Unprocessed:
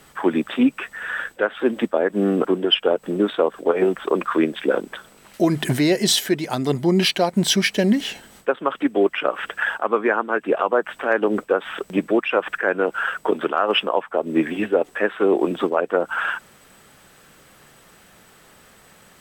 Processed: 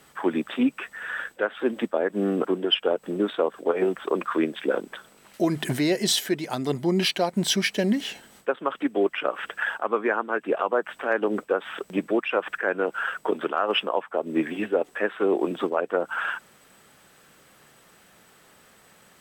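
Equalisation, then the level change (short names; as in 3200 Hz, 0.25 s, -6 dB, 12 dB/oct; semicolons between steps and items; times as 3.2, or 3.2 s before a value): low shelf 70 Hz -10 dB; -4.5 dB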